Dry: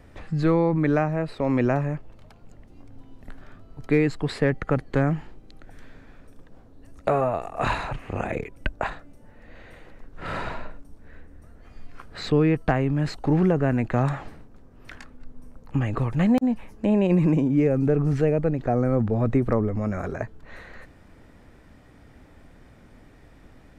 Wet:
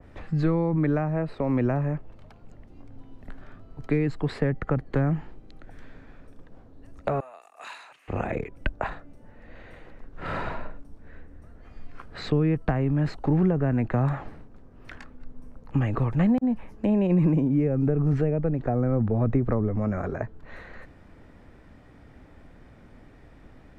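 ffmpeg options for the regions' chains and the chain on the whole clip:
ffmpeg -i in.wav -filter_complex "[0:a]asettb=1/sr,asplit=3[link_01][link_02][link_03];[link_01]atrim=end=7.204[link_04];[link_02]atrim=start=7.2:end=8.08,asetpts=PTS-STARTPTS,afade=type=in:duration=0.004:curve=qsin,afade=type=out:start_time=0.876:duration=0.004:curve=qsin,highpass=230,aderivative[link_05];[link_03]atrim=start=8.076[link_06];[link_04][link_05]acrossfade=duration=0.004:curve1=hsin:curve2=qsin[link_07];[link_07][link_06]acrossfade=duration=0.004:curve1=qsin:curve2=hsin,aemphasis=mode=reproduction:type=cd,acrossover=split=210[link_08][link_09];[link_09]acompressor=threshold=-24dB:ratio=6[link_10];[link_08][link_10]amix=inputs=2:normalize=0,adynamicequalizer=threshold=0.00501:dfrequency=2100:dqfactor=0.7:tfrequency=2100:tqfactor=0.7:attack=5:release=100:ratio=0.375:range=2.5:mode=cutabove:tftype=highshelf" out.wav

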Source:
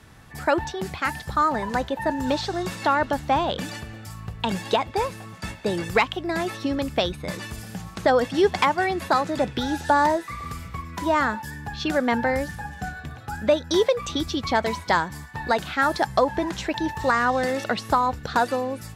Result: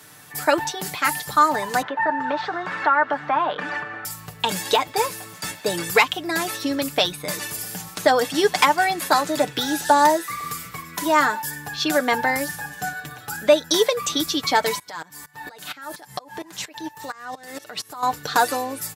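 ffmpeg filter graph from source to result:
ffmpeg -i in.wav -filter_complex "[0:a]asettb=1/sr,asplit=3[link_01][link_02][link_03];[link_01]atrim=end=1.824[link_04];[link_02]atrim=start=1.82:end=4.05,asetpts=PTS-STARTPTS,afade=type=in:duration=0.004:curve=qsin,afade=type=out:start_time=2.226:duration=0.004:curve=qsin,acompressor=threshold=-32dB:ratio=2:attack=3.2:release=140:knee=1:detection=peak,highpass=120,lowpass=2000,equalizer=frequency=1400:width=0.72:gain=12.5[link_05];[link_03]atrim=start=4.046[link_06];[link_04][link_05]acrossfade=duration=0.004:curve1=hsin:curve2=qsin[link_07];[link_07][link_06]acrossfade=duration=0.004:curve1=qsin:curve2=hsin,asettb=1/sr,asplit=3[link_08][link_09][link_10];[link_08]atrim=end=14.794[link_11];[link_09]atrim=start=14.79:end=18.03,asetpts=PTS-STARTPTS,afade=type=in:duration=0.004:curve=qsin,afade=type=out:start_time=3.236:duration=0.004:curve=qsin,bandreject=frequency=48.96:width_type=h:width=4,bandreject=frequency=97.92:width_type=h:width=4,bandreject=frequency=146.88:width_type=h:width=4,acompressor=threshold=-25dB:ratio=12:attack=3.2:release=140:knee=1:detection=peak,aeval=exprs='val(0)*pow(10,-22*if(lt(mod(-4.3*n/s,1),2*abs(-4.3)/1000),1-mod(-4.3*n/s,1)/(2*abs(-4.3)/1000),(mod(-4.3*n/s,1)-2*abs(-4.3)/1000)/(1-2*abs(-4.3)/1000))/20)':channel_layout=same[link_12];[link_10]atrim=start=18.026[link_13];[link_11][link_12]acrossfade=duration=0.004:curve1=hsin:curve2=qsin[link_14];[link_14][link_13]acrossfade=duration=0.004:curve1=qsin:curve2=hsin,highpass=56,aemphasis=mode=production:type=bsi,aecho=1:1:6.7:0.56,volume=2dB" out.wav

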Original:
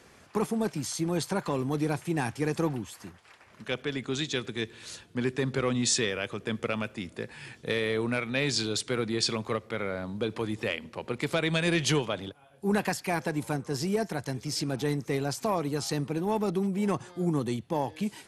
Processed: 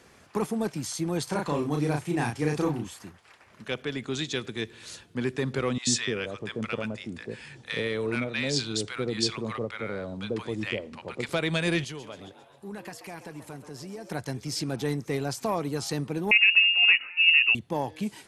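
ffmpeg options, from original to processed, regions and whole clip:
ffmpeg -i in.wav -filter_complex "[0:a]asettb=1/sr,asplit=3[link_01][link_02][link_03];[link_01]atrim=end=1.244[link_04];[link_02]atrim=start=1.24:end=2.99,asetpts=PTS-STARTPTS,afade=type=in:duration=0.004:curve=qsin,afade=type=out:start_time=1.746:duration=0.004:curve=qsin,lowpass=11000,asplit=2[link_05][link_06];[link_06]adelay=34,volume=-3dB[link_07];[link_05][link_07]amix=inputs=2:normalize=0,atrim=end_sample=77175[link_08];[link_03]atrim=start=2.986[link_09];[link_04][link_08]acrossfade=duration=0.004:curve1=hsin:curve2=qsin[link_10];[link_10][link_09]acrossfade=duration=0.004:curve1=qsin:curve2=hsin,asettb=1/sr,asplit=3[link_11][link_12][link_13];[link_11]atrim=end=5.784[link_14];[link_12]atrim=start=5.78:end=11.29,asetpts=PTS-STARTPTS,afade=type=in:duration=0.004:curve=qsin,afade=type=out:start_time=5.506:duration=0.004:curve=qsin,lowpass=frequency=9400:width=0.5412,lowpass=frequency=9400:width=1.3066,acrossover=split=840[link_15][link_16];[link_15]adelay=90[link_17];[link_17][link_16]amix=inputs=2:normalize=0,atrim=end_sample=242991[link_18];[link_13]atrim=start=11.286[link_19];[link_14][link_18]acrossfade=duration=0.004:curve1=hsin:curve2=qsin[link_20];[link_20][link_19]acrossfade=duration=0.004:curve1=qsin:curve2=hsin,asettb=1/sr,asplit=3[link_21][link_22][link_23];[link_21]atrim=end=11.844[link_24];[link_22]atrim=start=11.84:end=14.1,asetpts=PTS-STARTPTS,afade=type=in:duration=0.004:curve=qsin,afade=type=out:start_time=2.256:duration=0.004:curve=qsin,acompressor=threshold=-46dB:ratio=2:attack=3.2:release=140:knee=1:detection=peak,asplit=7[link_25][link_26][link_27][link_28][link_29][link_30][link_31];[link_26]adelay=133,afreqshift=140,volume=-12dB[link_32];[link_27]adelay=266,afreqshift=280,volume=-17.2dB[link_33];[link_28]adelay=399,afreqshift=420,volume=-22.4dB[link_34];[link_29]adelay=532,afreqshift=560,volume=-27.6dB[link_35];[link_30]adelay=665,afreqshift=700,volume=-32.8dB[link_36];[link_31]adelay=798,afreqshift=840,volume=-38dB[link_37];[link_25][link_32][link_33][link_34][link_35][link_36][link_37]amix=inputs=7:normalize=0,atrim=end_sample=99666[link_38];[link_23]atrim=start=14.096[link_39];[link_24][link_38]acrossfade=duration=0.004:curve1=hsin:curve2=qsin[link_40];[link_40][link_39]acrossfade=duration=0.004:curve1=qsin:curve2=hsin,asettb=1/sr,asplit=3[link_41][link_42][link_43];[link_41]atrim=end=16.314[link_44];[link_42]atrim=start=16.31:end=17.55,asetpts=PTS-STARTPTS,afade=type=in:duration=0.004:curve=qsin,afade=type=out:start_time=1.236:duration=0.004:curve=qsin,equalizer=frequency=460:width_type=o:width=2.6:gain=11,lowpass=frequency=2600:width_type=q:width=0.5098,lowpass=frequency=2600:width_type=q:width=0.6013,lowpass=frequency=2600:width_type=q:width=0.9,lowpass=frequency=2600:width_type=q:width=2.563,afreqshift=-3000[link_45];[link_43]atrim=start=17.546[link_46];[link_44][link_45]acrossfade=duration=0.004:curve1=hsin:curve2=qsin[link_47];[link_47][link_46]acrossfade=duration=0.004:curve1=qsin:curve2=hsin" out.wav

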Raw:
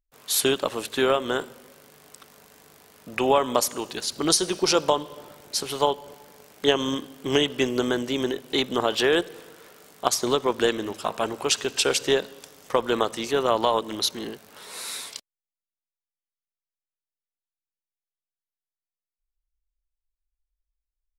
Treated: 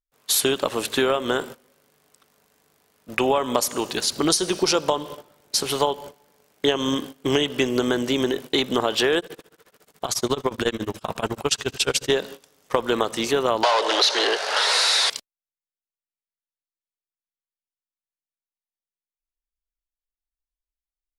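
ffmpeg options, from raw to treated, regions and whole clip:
ffmpeg -i in.wav -filter_complex "[0:a]asettb=1/sr,asplit=3[link_01][link_02][link_03];[link_01]atrim=end=9.184[link_04];[link_02]atrim=start=9.18:end=12.1,asetpts=PTS-STARTPTS,afade=type=in:duration=0.004:curve=qsin,afade=type=out:start_time=2.916:duration=0.004:curve=qsin,asubboost=boost=3.5:cutoff=210,acompressor=mode=upward:threshold=-32dB:ratio=2.5:attack=3.2:release=140:knee=2.83:detection=peak,tremolo=f=14:d=0.96[link_05];[link_03]atrim=start=12.096[link_06];[link_04][link_05]acrossfade=duration=0.004:curve1=hsin:curve2=qsin[link_07];[link_07][link_06]acrossfade=duration=0.004:curve1=qsin:curve2=hsin,asettb=1/sr,asplit=3[link_08][link_09][link_10];[link_08]atrim=end=13.634[link_11];[link_09]atrim=start=13.63:end=15.1,asetpts=PTS-STARTPTS,afade=type=in:duration=0.004:curve=qsin,afade=type=out:start_time=1.466:duration=0.004:curve=qsin,asplit=2[link_12][link_13];[link_13]highpass=frequency=720:poles=1,volume=32dB,asoftclip=type=tanh:threshold=-7dB[link_14];[link_12][link_14]amix=inputs=2:normalize=0,lowpass=frequency=3700:poles=1,volume=-6dB,highpass=frequency=480:width=0.5412,highpass=frequency=480:width=1.3066,equalizer=frequency=1100:width_type=q:width=4:gain=-5,equalizer=frequency=2300:width_type=q:width=4:gain=-5,equalizer=frequency=4700:width_type=q:width=4:gain=4,equalizer=frequency=7800:width_type=q:width=4:gain=-6,lowpass=frequency=8800:width=0.5412,lowpass=frequency=8800:width=1.3066[link_15];[link_10]atrim=start=15.096[link_16];[link_11][link_15]acrossfade=duration=0.004:curve1=hsin:curve2=qsin[link_17];[link_17][link_16]acrossfade=duration=0.004:curve1=qsin:curve2=hsin,agate=range=-17dB:threshold=-39dB:ratio=16:detection=peak,acompressor=threshold=-25dB:ratio=3,volume=6.5dB" out.wav

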